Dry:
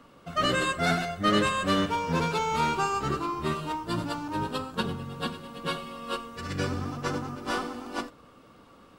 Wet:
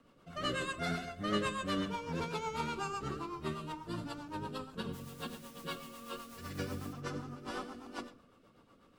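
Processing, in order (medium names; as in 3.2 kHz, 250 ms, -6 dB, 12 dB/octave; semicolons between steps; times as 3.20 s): 4.92–6.92 s: added noise white -46 dBFS; on a send at -14 dB: reverberation RT60 0.40 s, pre-delay 70 ms; on the sum: rotary cabinet horn 8 Hz; trim -8 dB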